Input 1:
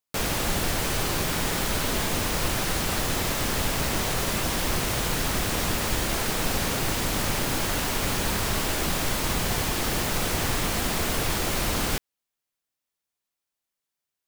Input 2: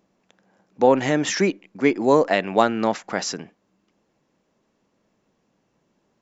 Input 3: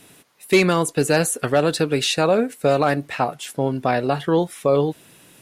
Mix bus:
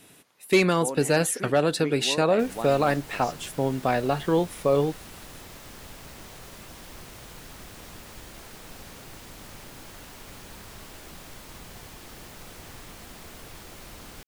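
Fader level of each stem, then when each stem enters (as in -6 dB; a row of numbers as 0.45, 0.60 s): -18.0, -17.0, -4.0 dB; 2.25, 0.00, 0.00 s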